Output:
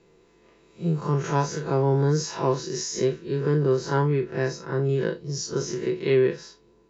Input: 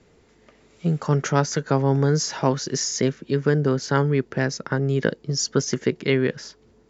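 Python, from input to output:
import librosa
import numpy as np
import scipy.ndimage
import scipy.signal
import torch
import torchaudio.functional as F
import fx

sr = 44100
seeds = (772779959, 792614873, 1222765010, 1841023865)

y = fx.spec_blur(x, sr, span_ms=88.0)
y = y + 0.5 * np.pad(y, (int(5.9 * sr / 1000.0), 0))[:len(y)]
y = fx.small_body(y, sr, hz=(400.0, 990.0, 2600.0, 3900.0), ring_ms=35, db=10)
y = y * 10.0 ** (-4.0 / 20.0)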